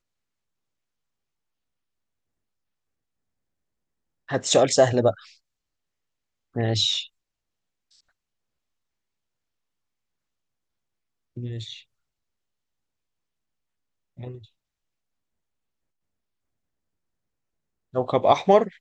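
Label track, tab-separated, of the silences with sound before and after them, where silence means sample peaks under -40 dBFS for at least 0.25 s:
5.290000	6.560000	silence
7.070000	11.370000	silence
11.800000	14.190000	silence
14.380000	17.940000	silence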